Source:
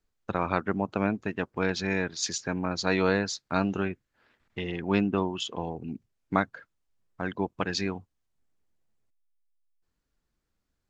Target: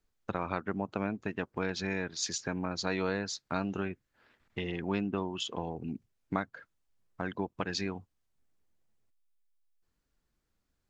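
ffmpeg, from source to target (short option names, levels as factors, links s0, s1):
-af "acompressor=threshold=0.0224:ratio=2"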